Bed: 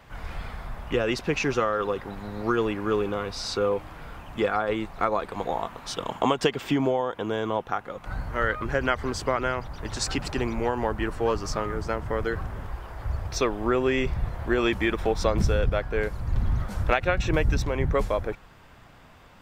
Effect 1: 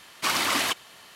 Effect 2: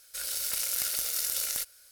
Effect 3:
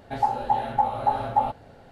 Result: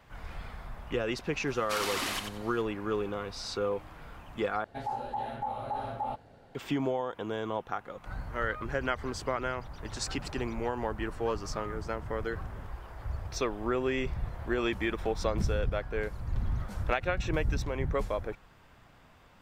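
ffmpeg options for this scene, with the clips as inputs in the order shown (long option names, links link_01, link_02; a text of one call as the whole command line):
ffmpeg -i bed.wav -i cue0.wav -i cue1.wav -i cue2.wav -filter_complex "[0:a]volume=-6.5dB[link_01];[1:a]aecho=1:1:91|182|273:0.501|0.12|0.0289[link_02];[3:a]alimiter=limit=-18.5dB:level=0:latency=1:release=38[link_03];[link_01]asplit=2[link_04][link_05];[link_04]atrim=end=4.644[link_06];[link_03]atrim=end=1.91,asetpts=PTS-STARTPTS,volume=-7dB[link_07];[link_05]atrim=start=6.546[link_08];[link_02]atrim=end=1.15,asetpts=PTS-STARTPTS,volume=-9.5dB,afade=type=in:duration=0.004:curve=hsin,afade=type=out:start_time=1.146:duration=0.004:curve=hsin,adelay=1470[link_09];[link_06][link_07]acrossfade=duration=0.004:curve1=hsin:curve2=hsin[link_10];[link_10][link_08]acrossfade=duration=0.004:curve1=hsin:curve2=hsin[link_11];[link_11][link_09]amix=inputs=2:normalize=0" out.wav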